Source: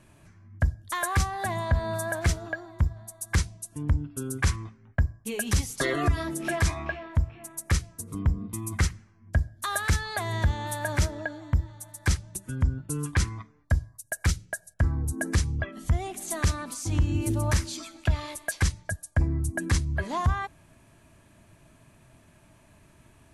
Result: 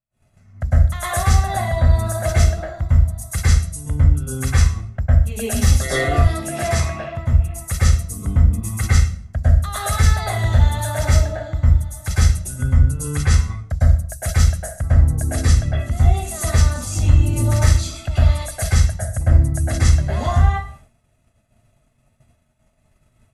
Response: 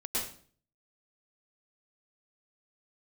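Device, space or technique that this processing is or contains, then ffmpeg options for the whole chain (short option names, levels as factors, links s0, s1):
microphone above a desk: -filter_complex "[0:a]aecho=1:1:1.5:0.64[s0];[1:a]atrim=start_sample=2205[s1];[s0][s1]afir=irnorm=-1:irlink=0,agate=range=0.0224:threshold=0.0141:ratio=3:detection=peak,asettb=1/sr,asplit=3[s2][s3][s4];[s2]atrim=end=6.274[s5];[s3]atrim=start=6.27:end=7.33,asetpts=PTS-STARTPTS,afade=t=in:d=0.004:c=qsin,afade=t=out:st=1.056:d=0.004:c=qsin,highpass=100[s6];[s4]atrim=start=7.326[s7];[s5][s6]acrossfade=d=0.004:c1=hsin:c2=qsin[s8];[s8][s7]acrossfade=d=0.004:c1=qsin:c2=hsin,volume=1.12"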